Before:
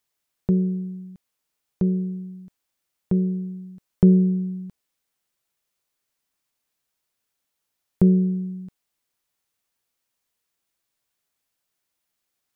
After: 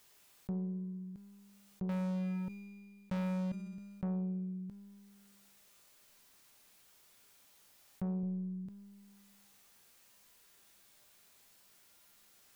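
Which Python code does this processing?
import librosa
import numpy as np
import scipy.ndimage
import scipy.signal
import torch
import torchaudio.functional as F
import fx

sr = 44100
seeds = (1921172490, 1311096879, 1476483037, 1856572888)

y = fx.leveller(x, sr, passes=5, at=(1.89, 3.52))
y = fx.low_shelf(y, sr, hz=110.0, db=9.0, at=(8.23, 8.66))
y = 10.0 ** (-16.0 / 20.0) * np.tanh(y / 10.0 ** (-16.0 / 20.0))
y = fx.comb_fb(y, sr, f0_hz=200.0, decay_s=1.2, harmonics='all', damping=0.0, mix_pct=80)
y = fx.env_flatten(y, sr, amount_pct=50)
y = y * librosa.db_to_amplitude(-4.0)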